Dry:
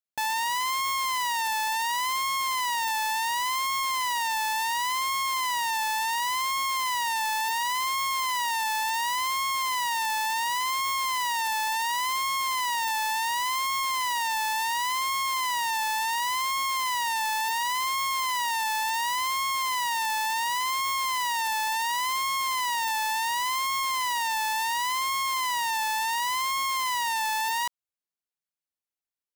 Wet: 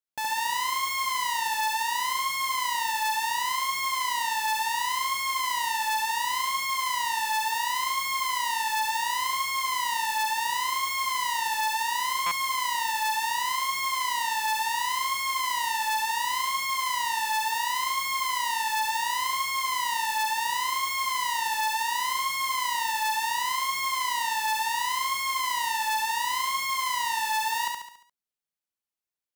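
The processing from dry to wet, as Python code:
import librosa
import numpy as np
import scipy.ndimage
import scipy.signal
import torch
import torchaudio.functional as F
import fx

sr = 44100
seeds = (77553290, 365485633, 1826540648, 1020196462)

y = fx.echo_feedback(x, sr, ms=70, feedback_pct=49, wet_db=-3.0)
y = fx.buffer_glitch(y, sr, at_s=(12.26,), block=256, repeats=8)
y = F.gain(torch.from_numpy(y), -2.5).numpy()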